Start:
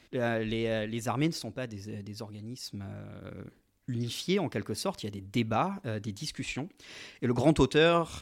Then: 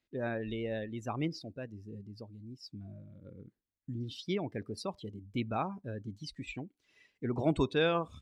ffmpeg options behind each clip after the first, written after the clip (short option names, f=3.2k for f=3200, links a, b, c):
-af "afftdn=nr=19:nf=-38,volume=-5.5dB"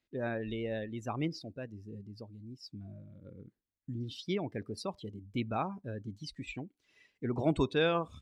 -af anull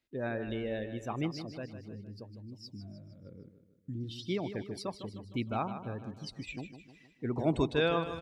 -af "aecho=1:1:154|308|462|616|770:0.299|0.149|0.0746|0.0373|0.0187"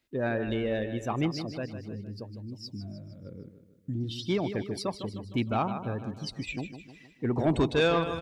-af "asoftclip=type=tanh:threshold=-23.5dB,volume=6.5dB"